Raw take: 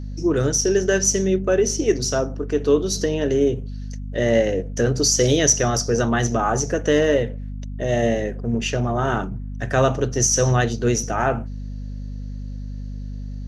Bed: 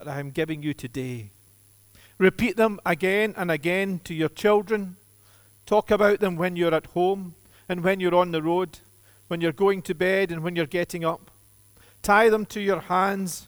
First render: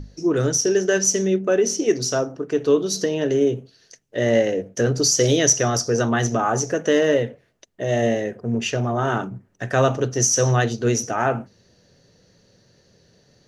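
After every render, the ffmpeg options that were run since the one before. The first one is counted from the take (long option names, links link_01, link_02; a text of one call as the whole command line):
ffmpeg -i in.wav -af "bandreject=frequency=50:width_type=h:width=6,bandreject=frequency=100:width_type=h:width=6,bandreject=frequency=150:width_type=h:width=6,bandreject=frequency=200:width_type=h:width=6,bandreject=frequency=250:width_type=h:width=6" out.wav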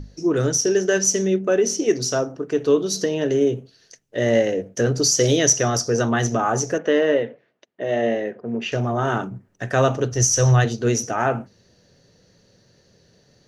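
ffmpeg -i in.wav -filter_complex "[0:a]asettb=1/sr,asplit=3[link_01][link_02][link_03];[link_01]atrim=end=6.784[link_04];[link_02]atrim=start=6.78:end=8.72,asetpts=PTS-STARTPTS,afade=type=in:duration=0.004:curve=qsin,afade=type=out:start_time=1.936:duration=0.004:curve=qsin,highpass=220,lowpass=3200[link_05];[link_03]atrim=start=8.716[link_06];[link_04][link_05]acrossfade=duration=0.004:curve1=hsin:curve2=qsin[link_07];[link_07][link_06]acrossfade=duration=0.004:curve1=qsin:curve2=hsin,asplit=3[link_08][link_09][link_10];[link_08]afade=type=out:start_time=10.1:duration=0.02[link_11];[link_09]asubboost=boost=7:cutoff=83,afade=type=in:start_time=10.1:duration=0.02,afade=type=out:start_time=10.64:duration=0.02[link_12];[link_10]afade=type=in:start_time=10.64:duration=0.02[link_13];[link_11][link_12][link_13]amix=inputs=3:normalize=0" out.wav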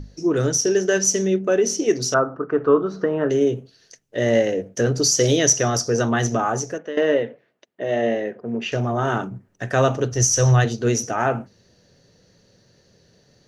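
ffmpeg -i in.wav -filter_complex "[0:a]asettb=1/sr,asplit=3[link_01][link_02][link_03];[link_01]atrim=end=2.144[link_04];[link_02]atrim=start=2.14:end=3.3,asetpts=PTS-STARTPTS,afade=type=in:duration=0.004:curve=qsin,afade=type=out:start_time=1.156:duration=0.004:curve=qsin,lowpass=frequency=1300:width_type=q:width=5.1[link_05];[link_03]atrim=start=3.296[link_06];[link_04][link_05]acrossfade=duration=0.004:curve1=hsin:curve2=qsin[link_07];[link_07][link_06]acrossfade=duration=0.004:curve1=qsin:curve2=hsin,asplit=2[link_08][link_09];[link_08]atrim=end=6.97,asetpts=PTS-STARTPTS,afade=type=out:start_time=6.39:duration=0.58:silence=0.188365[link_10];[link_09]atrim=start=6.97,asetpts=PTS-STARTPTS,afade=type=in:duration=0.004:curve=hsin:silence=0.188365[link_11];[link_10][link_11]concat=n=2:v=0:a=1" out.wav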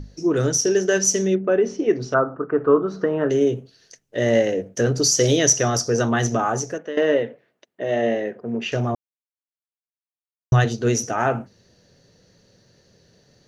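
ffmpeg -i in.wav -filter_complex "[0:a]asettb=1/sr,asplit=3[link_01][link_02][link_03];[link_01]atrim=end=1.354[link_04];[link_02]atrim=start=1.35:end=2.88,asetpts=PTS-STARTPTS,afade=type=in:duration=0.004:curve=qsin,afade=type=out:start_time=1.526:duration=0.004:curve=qsin,lowpass=2300[link_05];[link_03]atrim=start=2.876[link_06];[link_04][link_05]acrossfade=duration=0.004:curve1=hsin:curve2=qsin[link_07];[link_07][link_06]acrossfade=duration=0.004:curve1=qsin:curve2=hsin,asplit=3[link_08][link_09][link_10];[link_08]atrim=end=8.95,asetpts=PTS-STARTPTS,afade=type=out:start_time=8.946:duration=0.004:curve=hsin[link_11];[link_09]atrim=start=8.95:end=10.52,asetpts=PTS-STARTPTS,volume=0[link_12];[link_10]atrim=start=10.52,asetpts=PTS-STARTPTS,afade=type=in:duration=0.004:curve=hsin[link_13];[link_11][link_12][link_13]concat=n=3:v=0:a=1" out.wav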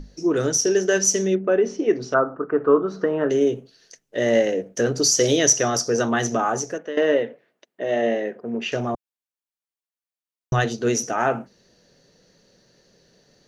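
ffmpeg -i in.wav -af "equalizer=frequency=95:width_type=o:width=0.85:gain=-13.5" out.wav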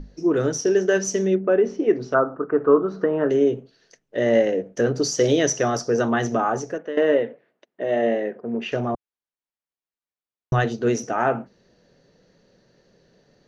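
ffmpeg -i in.wav -af "aemphasis=mode=reproduction:type=75fm" out.wav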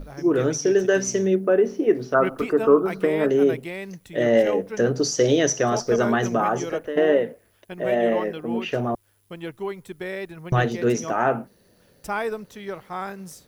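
ffmpeg -i in.wav -i bed.wav -filter_complex "[1:a]volume=-9.5dB[link_01];[0:a][link_01]amix=inputs=2:normalize=0" out.wav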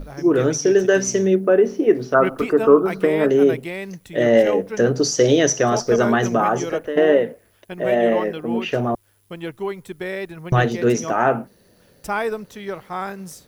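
ffmpeg -i in.wav -af "volume=3.5dB" out.wav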